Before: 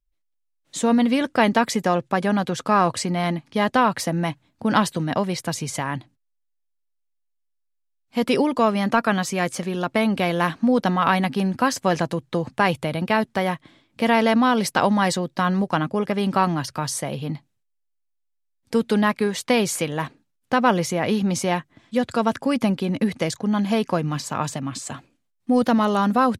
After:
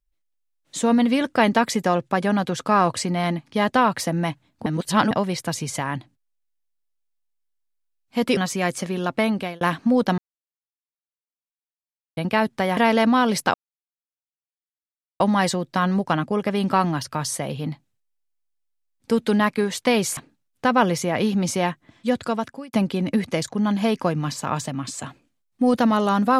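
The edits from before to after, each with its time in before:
4.66–5.11 reverse
8.37–9.14 cut
9.89–10.38 fade out equal-power
10.95–12.94 mute
13.54–14.06 cut
14.83 insert silence 1.66 s
19.8–20.05 cut
22.03–22.61 fade out

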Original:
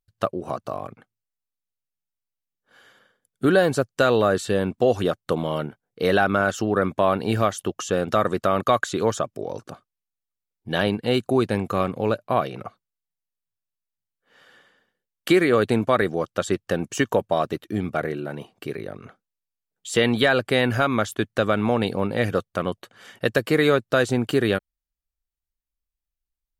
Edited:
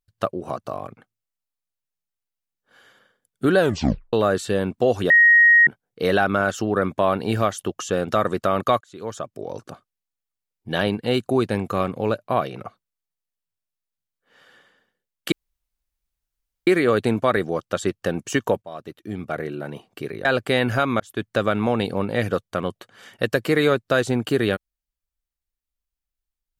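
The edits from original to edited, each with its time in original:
3.59 tape stop 0.54 s
5.1–5.67 bleep 1880 Hz -9.5 dBFS
8.81–9.58 fade in linear
15.32 insert room tone 1.35 s
17.27–18.28 fade in, from -19 dB
18.9–20.27 cut
21.02–21.28 fade in

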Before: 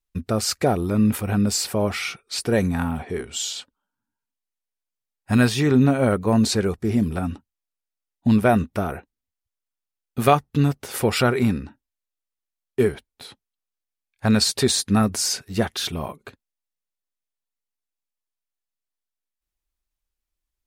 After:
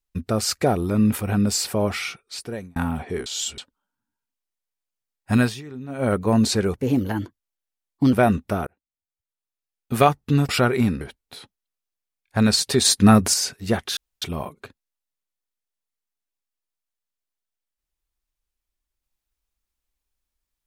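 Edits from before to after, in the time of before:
1.94–2.76 fade out
3.26–3.58 reverse
5.36–6.14 dip -19.5 dB, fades 0.26 s
6.75–8.39 speed 119%
8.93–10.23 fade in
10.75–11.11 cut
11.63–12.89 cut
14.73–15.22 gain +5.5 dB
15.85 insert room tone 0.25 s

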